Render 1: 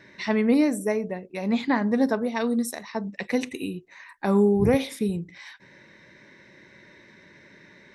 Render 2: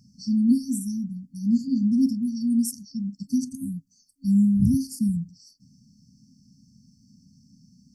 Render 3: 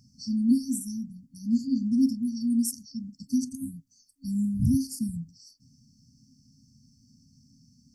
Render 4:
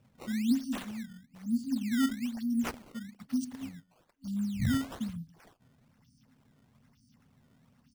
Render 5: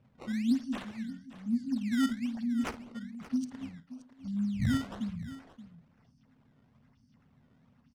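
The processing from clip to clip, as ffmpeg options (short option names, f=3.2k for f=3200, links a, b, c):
-af "afftfilt=real='re*(1-between(b*sr/4096,270,4400))':imag='im*(1-between(b*sr/4096,270,4400))':win_size=4096:overlap=0.75,volume=3.5dB"
-af "equalizer=f=190:w=4.8:g=-12.5"
-af "aecho=1:1:145:0.0631,acrusher=samples=15:mix=1:aa=0.000001:lfo=1:lforange=24:lforate=1.1,volume=-5.5dB"
-af "adynamicsmooth=sensitivity=7.5:basefreq=4.1k,aecho=1:1:54|576:0.178|0.178"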